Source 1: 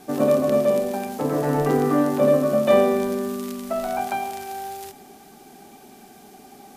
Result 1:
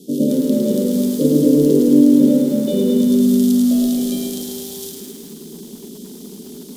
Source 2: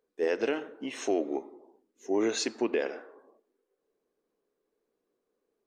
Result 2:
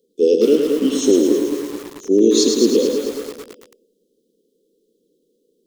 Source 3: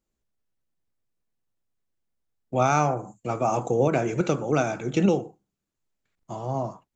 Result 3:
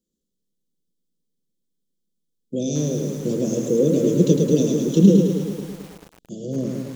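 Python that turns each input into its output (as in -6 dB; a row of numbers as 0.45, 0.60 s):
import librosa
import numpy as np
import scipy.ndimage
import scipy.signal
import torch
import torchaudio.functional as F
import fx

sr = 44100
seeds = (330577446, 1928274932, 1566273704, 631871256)

p1 = fx.rider(x, sr, range_db=4, speed_s=0.5)
p2 = scipy.signal.sosfilt(scipy.signal.cheby1(4, 1.0, [510.0, 3200.0], 'bandstop', fs=sr, output='sos'), p1)
p3 = fx.low_shelf_res(p2, sr, hz=140.0, db=-7.0, q=3.0)
p4 = p3 + fx.echo_feedback(p3, sr, ms=106, feedback_pct=59, wet_db=-5.0, dry=0)
p5 = fx.dynamic_eq(p4, sr, hz=920.0, q=1.9, threshold_db=-46.0, ratio=4.0, max_db=-5)
p6 = fx.echo_crushed(p5, sr, ms=219, feedback_pct=55, bits=7, wet_db=-9.0)
y = p6 * 10.0 ** (-1.5 / 20.0) / np.max(np.abs(p6))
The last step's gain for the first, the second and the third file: +6.0, +15.0, +6.0 dB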